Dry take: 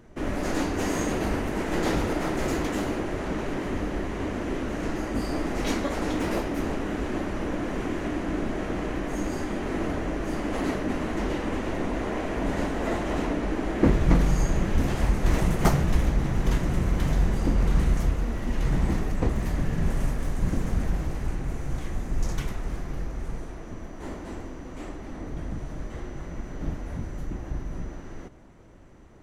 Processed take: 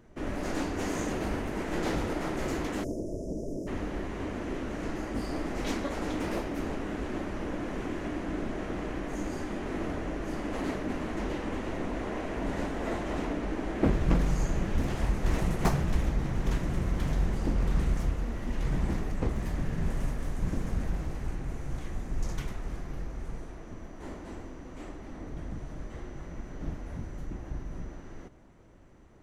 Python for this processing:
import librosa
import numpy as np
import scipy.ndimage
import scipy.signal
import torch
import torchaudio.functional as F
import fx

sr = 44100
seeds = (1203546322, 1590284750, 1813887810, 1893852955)

y = fx.spec_erase(x, sr, start_s=2.84, length_s=0.84, low_hz=700.0, high_hz=5000.0)
y = fx.doppler_dist(y, sr, depth_ms=0.44)
y = y * librosa.db_to_amplitude(-5.0)